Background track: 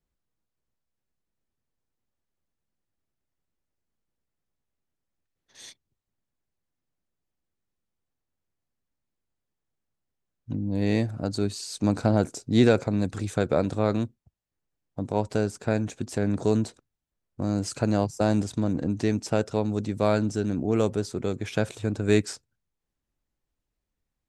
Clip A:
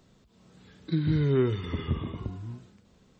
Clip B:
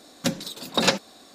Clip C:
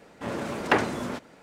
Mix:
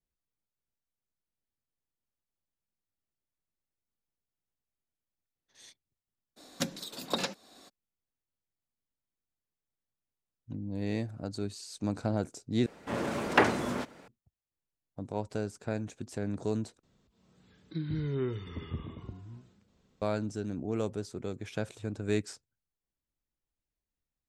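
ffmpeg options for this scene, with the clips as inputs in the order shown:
ffmpeg -i bed.wav -i cue0.wav -i cue1.wav -i cue2.wav -filter_complex "[0:a]volume=-9dB[link_01];[2:a]acompressor=threshold=-31dB:ratio=5:attack=73:release=716:knee=6:detection=peak[link_02];[link_01]asplit=3[link_03][link_04][link_05];[link_03]atrim=end=12.664[link_06];[3:a]atrim=end=1.42,asetpts=PTS-STARTPTS,volume=-1dB[link_07];[link_04]atrim=start=14.076:end=16.834[link_08];[1:a]atrim=end=3.19,asetpts=PTS-STARTPTS,volume=-8.5dB[link_09];[link_05]atrim=start=20.016[link_10];[link_02]atrim=end=1.34,asetpts=PTS-STARTPTS,volume=-4dB,afade=type=in:duration=0.02,afade=type=out:start_time=1.32:duration=0.02,adelay=6360[link_11];[link_06][link_07]acrossfade=duration=0.004:curve1=hsin:curve2=hsin[link_12];[link_12][link_08]acrossfade=duration=0.004:curve1=hsin:curve2=hsin[link_13];[link_13][link_09]acrossfade=duration=0.004:curve1=hsin:curve2=hsin[link_14];[link_14][link_10]acrossfade=duration=0.004:curve1=hsin:curve2=hsin[link_15];[link_15][link_11]amix=inputs=2:normalize=0" out.wav

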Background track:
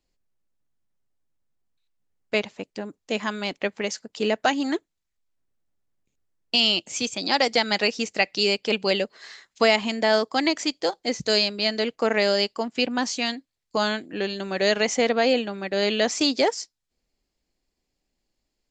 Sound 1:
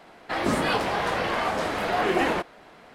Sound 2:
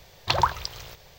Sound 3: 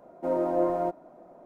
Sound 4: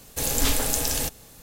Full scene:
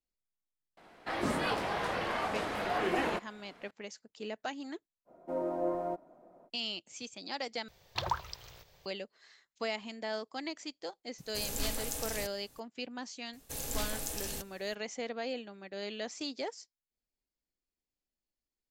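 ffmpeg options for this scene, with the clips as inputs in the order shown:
ffmpeg -i bed.wav -i cue0.wav -i cue1.wav -i cue2.wav -i cue3.wav -filter_complex "[4:a]asplit=2[link_01][link_02];[0:a]volume=-17dB,asplit=2[link_03][link_04];[link_03]atrim=end=7.684[link_05];[2:a]atrim=end=1.18,asetpts=PTS-STARTPTS,volume=-11.5dB[link_06];[link_04]atrim=start=8.856[link_07];[1:a]atrim=end=2.94,asetpts=PTS-STARTPTS,volume=-8dB,afade=type=in:duration=0.004:curve=hsin,afade=type=out:start_time=2.936:duration=0.004:curve=hsin,adelay=770[link_08];[3:a]atrim=end=1.45,asetpts=PTS-STARTPTS,volume=-7.5dB,afade=type=in:duration=0.05,afade=type=out:start_time=1.4:duration=0.05,adelay=222705S[link_09];[link_01]atrim=end=1.42,asetpts=PTS-STARTPTS,volume=-13dB,afade=type=in:duration=0.004:curve=hsin,afade=type=out:start_time=1.416:duration=0.004:curve=hsin,adelay=11180[link_10];[link_02]atrim=end=1.42,asetpts=PTS-STARTPTS,volume=-13.5dB,afade=type=in:duration=0.004:curve=hsin,afade=type=out:start_time=1.416:duration=0.004:curve=hsin,adelay=13330[link_11];[link_05][link_06]acrossfade=duration=0.004:curve1=hsin:curve2=hsin[link_12];[link_12][link_07]acrossfade=duration=0.004:curve1=hsin:curve2=hsin[link_13];[link_13][link_08][link_09][link_10][link_11]amix=inputs=5:normalize=0" out.wav

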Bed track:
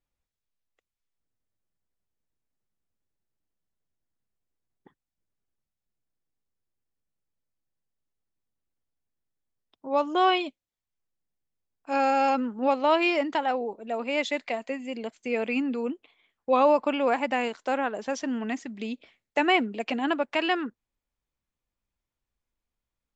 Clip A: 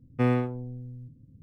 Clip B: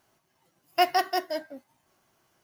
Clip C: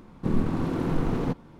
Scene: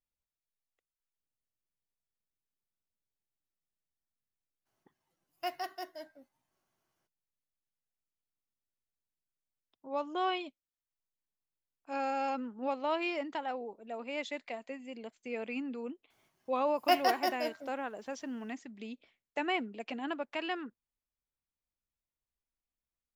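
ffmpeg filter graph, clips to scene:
ffmpeg -i bed.wav -i cue0.wav -i cue1.wav -filter_complex "[2:a]asplit=2[link_01][link_02];[0:a]volume=-10.5dB[link_03];[link_01]atrim=end=2.43,asetpts=PTS-STARTPTS,volume=-14.5dB,afade=type=in:duration=0.02,afade=type=out:start_time=2.41:duration=0.02,adelay=205065S[link_04];[link_02]atrim=end=2.43,asetpts=PTS-STARTPTS,volume=-4.5dB,afade=type=in:duration=0.004:curve=hsin,afade=type=out:start_time=2.426:duration=0.004:curve=hsin,adelay=16100[link_05];[link_03][link_04][link_05]amix=inputs=3:normalize=0" out.wav

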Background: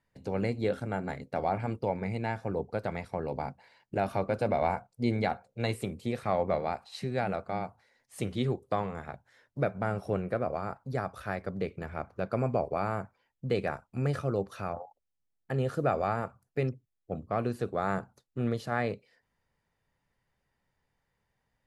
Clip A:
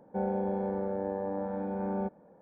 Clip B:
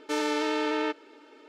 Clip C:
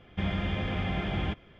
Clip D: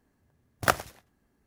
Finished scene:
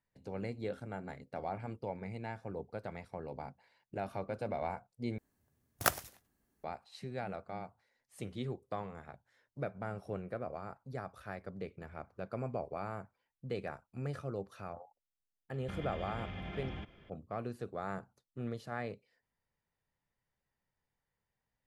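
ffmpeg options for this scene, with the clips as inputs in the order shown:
ffmpeg -i bed.wav -i cue0.wav -i cue1.wav -i cue2.wav -i cue3.wav -filter_complex "[0:a]volume=-9.5dB[link_01];[4:a]crystalizer=i=1.5:c=0[link_02];[3:a]acompressor=threshold=-34dB:ratio=6:attack=3.2:release=140:knee=1:detection=peak[link_03];[link_01]asplit=2[link_04][link_05];[link_04]atrim=end=5.184[link_06];[link_02]atrim=end=1.46,asetpts=PTS-STARTPTS,volume=-8.5dB[link_07];[link_05]atrim=start=6.636[link_08];[link_03]atrim=end=1.59,asetpts=PTS-STARTPTS,volume=-5dB,afade=type=in:duration=0.004:curve=hsin,afade=type=out:start_time=1.586:duration=0.004:curve=hsin,adelay=15510[link_09];[link_06][link_07]acrossfade=duration=0.004:curve1=hsin:curve2=hsin[link_10];[link_10][link_08]acrossfade=duration=0.004:curve1=hsin:curve2=hsin[link_11];[link_11][link_09]amix=inputs=2:normalize=0" out.wav

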